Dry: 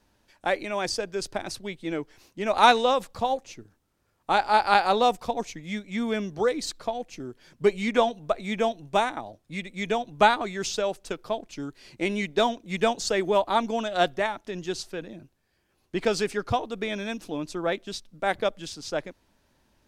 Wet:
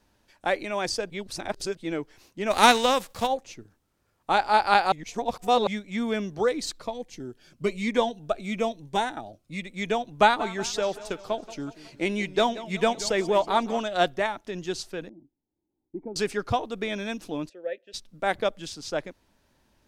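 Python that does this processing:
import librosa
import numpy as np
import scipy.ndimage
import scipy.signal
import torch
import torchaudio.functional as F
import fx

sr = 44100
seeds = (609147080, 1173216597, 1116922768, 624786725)

y = fx.envelope_flatten(x, sr, power=0.6, at=(2.5, 3.26), fade=0.02)
y = fx.notch_cascade(y, sr, direction='falling', hz=1.1, at=(6.82, 9.64))
y = fx.echo_warbled(y, sr, ms=184, feedback_pct=52, rate_hz=2.8, cents=144, wet_db=-16, at=(10.19, 13.84))
y = fx.formant_cascade(y, sr, vowel='u', at=(15.09, 16.16))
y = fx.vowel_filter(y, sr, vowel='e', at=(17.48, 17.93), fade=0.02)
y = fx.edit(y, sr, fx.reverse_span(start_s=1.1, length_s=0.67),
    fx.reverse_span(start_s=4.92, length_s=0.75), tone=tone)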